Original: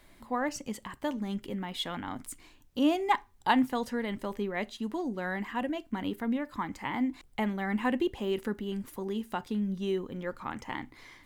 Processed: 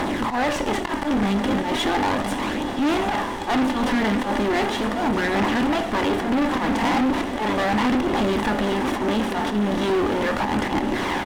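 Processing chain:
compressor on every frequency bin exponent 0.4
flanger 0.37 Hz, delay 0 ms, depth 4.5 ms, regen +22%
volume swells 102 ms
high-shelf EQ 3,800 Hz −7 dB
double-tracking delay 24 ms −13 dB
on a send: feedback delay with all-pass diffusion 1,019 ms, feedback 65%, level −13.5 dB
on the sum: leveller curve on the samples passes 3
asymmetric clip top −29.5 dBFS
high-shelf EQ 8,300 Hz −5.5 dB
level +3 dB

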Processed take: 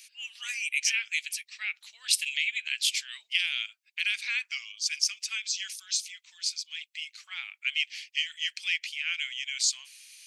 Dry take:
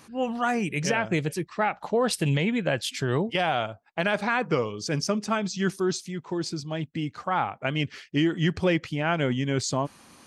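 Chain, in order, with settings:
Chebyshev high-pass filter 2,300 Hz, order 4
level +6 dB

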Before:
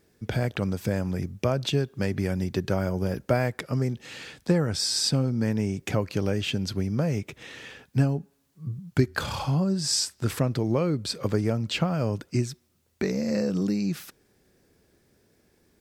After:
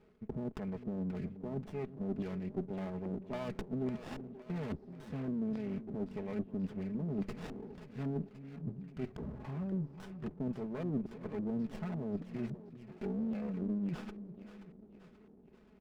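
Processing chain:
parametric band 6,700 Hz −12.5 dB 2.1 octaves
comb filter 4.7 ms, depth 75%
reversed playback
downward compressor 8 to 1, threshold −36 dBFS, peak gain reduction 21 dB
reversed playback
auto-filter low-pass square 1.8 Hz 330–2,400 Hz
on a send: echo with a time of its own for lows and highs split 350 Hz, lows 379 ms, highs 531 ms, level −12.5 dB
on the sum: windowed peak hold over 17 samples
level −1 dB

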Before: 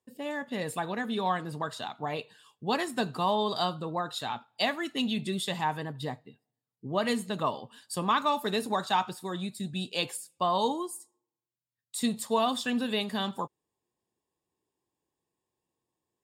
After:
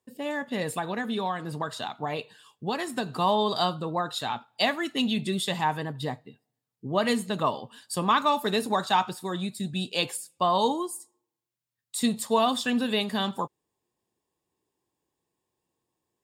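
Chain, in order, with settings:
0:00.77–0:03.12: downward compressor 5 to 1, threshold −29 dBFS, peak gain reduction 6.5 dB
level +3.5 dB

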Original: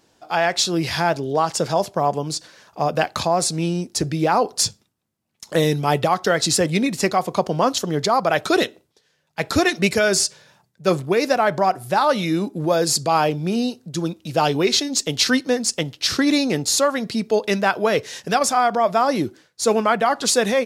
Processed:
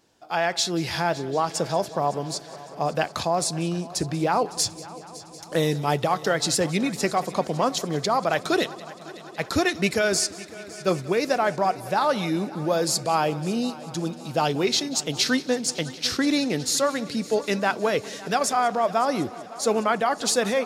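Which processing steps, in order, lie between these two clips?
echo machine with several playback heads 186 ms, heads first and third, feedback 69%, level −20 dB
level −4.5 dB

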